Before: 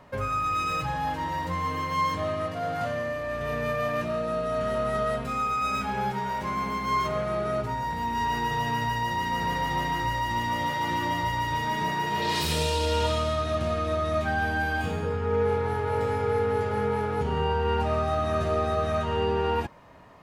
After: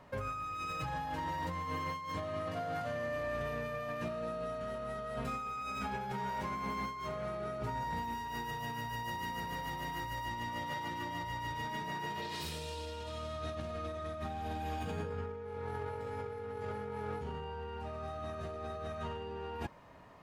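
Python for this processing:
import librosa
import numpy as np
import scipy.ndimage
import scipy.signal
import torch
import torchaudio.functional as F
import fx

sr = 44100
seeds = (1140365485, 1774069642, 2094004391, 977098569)

y = fx.high_shelf(x, sr, hz=9600.0, db=10.0, at=(8.04, 10.26))
y = fx.spec_repair(y, sr, seeds[0], start_s=13.95, length_s=0.91, low_hz=1500.0, high_hz=8600.0, source='both')
y = fx.over_compress(y, sr, threshold_db=-31.0, ratio=-1.0)
y = F.gain(torch.from_numpy(y), -8.5).numpy()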